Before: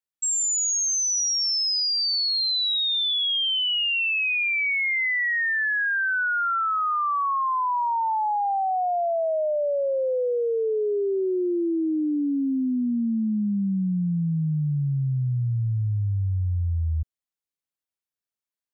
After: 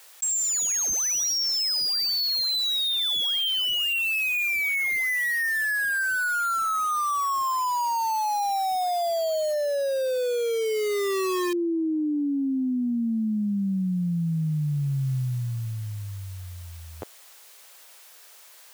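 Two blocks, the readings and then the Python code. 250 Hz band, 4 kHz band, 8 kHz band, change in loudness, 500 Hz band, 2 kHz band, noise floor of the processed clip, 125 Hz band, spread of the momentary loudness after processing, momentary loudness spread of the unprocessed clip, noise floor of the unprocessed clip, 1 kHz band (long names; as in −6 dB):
−1.5 dB, −1.5 dB, can't be measured, −1.0 dB, −1.5 dB, −1.5 dB, −50 dBFS, −4.0 dB, 8 LU, 5 LU, below −85 dBFS, −1.5 dB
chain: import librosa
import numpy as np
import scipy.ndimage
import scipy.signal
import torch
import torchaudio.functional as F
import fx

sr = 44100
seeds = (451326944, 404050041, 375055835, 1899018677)

p1 = scipy.signal.sosfilt(scipy.signal.butter(4, 460.0, 'highpass', fs=sr, output='sos'), x)
p2 = (np.mod(10.0 ** (31.0 / 20.0) * p1 + 1.0, 2.0) - 1.0) / 10.0 ** (31.0 / 20.0)
p3 = p1 + (p2 * 10.0 ** (-3.5 / 20.0))
p4 = fx.env_flatten(p3, sr, amount_pct=100)
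y = p4 * 10.0 ** (-2.0 / 20.0)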